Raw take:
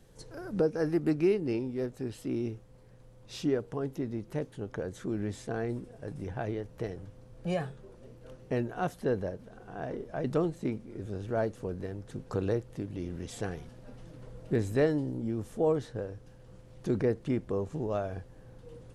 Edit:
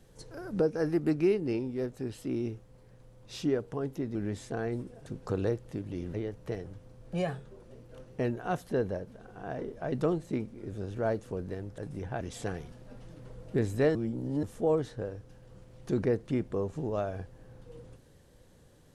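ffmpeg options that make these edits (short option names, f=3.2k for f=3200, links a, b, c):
-filter_complex "[0:a]asplit=8[a][b][c][d][e][f][g][h];[a]atrim=end=4.152[i];[b]atrim=start=5.118:end=6.032[j];[c]atrim=start=12.098:end=13.182[k];[d]atrim=start=6.458:end=12.102[l];[e]atrim=start=6.028:end=6.462[m];[f]atrim=start=13.178:end=14.922[n];[g]atrim=start=14.918:end=15.402,asetpts=PTS-STARTPTS,areverse[o];[h]atrim=start=15.398[p];[i][j]acrossfade=d=0.004:c1=hsin:c2=hsin[q];[q][k]acrossfade=d=0.004:c1=hsin:c2=hsin[r];[r][l]acrossfade=d=0.004:c1=hsin:c2=hsin[s];[s][m]acrossfade=d=0.004:c1=hsin:c2=hsin[t];[t][n]acrossfade=d=0.004:c1=hsin:c2=hsin[u];[u][o]acrossfade=d=0.004:c1=hsin:c2=hsin[v];[v][p]acrossfade=d=0.004:c1=hsin:c2=hsin"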